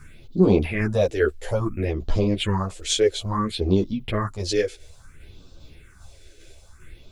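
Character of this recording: a quantiser's noise floor 12-bit, dither none; phasing stages 4, 0.59 Hz, lowest notch 160–2000 Hz; tremolo saw down 2.5 Hz, depth 40%; a shimmering, thickened sound

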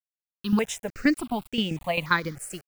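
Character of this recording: tremolo saw down 7.6 Hz, depth 70%; a quantiser's noise floor 8-bit, dither none; notches that jump at a steady rate 3.4 Hz 980–4100 Hz

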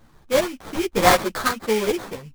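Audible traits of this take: aliases and images of a low sample rate 2.8 kHz, jitter 20%; random-step tremolo; a shimmering, thickened sound

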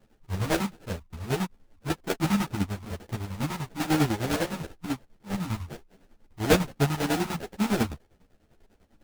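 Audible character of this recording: chopped level 10 Hz, depth 65%, duty 50%; aliases and images of a low sample rate 1.1 kHz, jitter 20%; a shimmering, thickened sound

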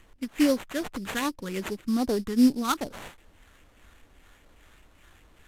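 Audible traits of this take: phasing stages 4, 2.5 Hz, lowest notch 600–2100 Hz; aliases and images of a low sample rate 5.1 kHz, jitter 20%; Vorbis

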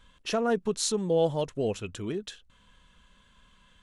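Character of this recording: noise floor -62 dBFS; spectral tilt -4.5 dB/octave

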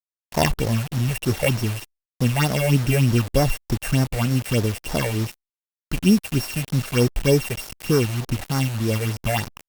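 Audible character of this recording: a buzz of ramps at a fixed pitch in blocks of 16 samples; phasing stages 6, 3.3 Hz, lowest notch 270–3200 Hz; a quantiser's noise floor 6-bit, dither none; Opus

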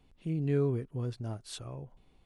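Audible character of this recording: noise floor -65 dBFS; spectral tilt -8.0 dB/octave

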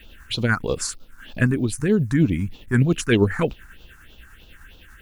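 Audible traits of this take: a quantiser's noise floor 10-bit, dither none; phasing stages 4, 3.2 Hz, lowest notch 520–1800 Hz; tremolo triangle 10 Hz, depth 40%

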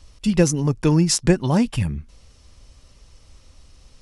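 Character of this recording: noise floor -52 dBFS; spectral tilt -5.5 dB/octave

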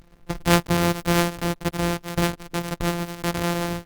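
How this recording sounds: a buzz of ramps at a fixed pitch in blocks of 256 samples; Opus

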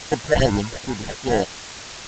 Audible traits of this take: aliases and images of a low sample rate 1.2 kHz, jitter 0%; phasing stages 6, 2.4 Hz, lowest notch 220–4700 Hz; a quantiser's noise floor 6-bit, dither triangular; G.722

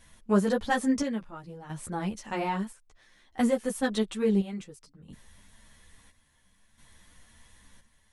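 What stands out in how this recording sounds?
chopped level 0.59 Hz, depth 65%, duty 60%; a shimmering, thickened sound

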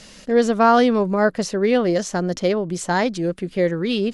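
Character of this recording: noise floor -44 dBFS; spectral tilt -4.5 dB/octave

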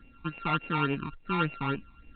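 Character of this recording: a buzz of ramps at a fixed pitch in blocks of 32 samples; phasing stages 12, 3.5 Hz, lowest notch 500–1300 Hz; µ-law

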